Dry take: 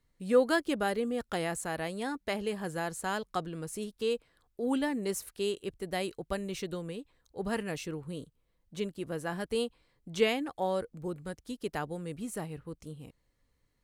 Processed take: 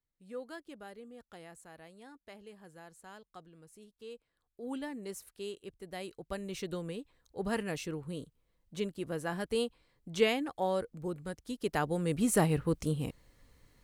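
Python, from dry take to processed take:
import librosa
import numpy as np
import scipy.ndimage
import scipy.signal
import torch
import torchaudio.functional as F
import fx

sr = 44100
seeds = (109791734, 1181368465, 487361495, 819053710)

y = fx.gain(x, sr, db=fx.line((3.94, -18.0), (4.71, -9.0), (5.94, -9.0), (6.76, -0.5), (11.45, -0.5), (12.45, 12.0)))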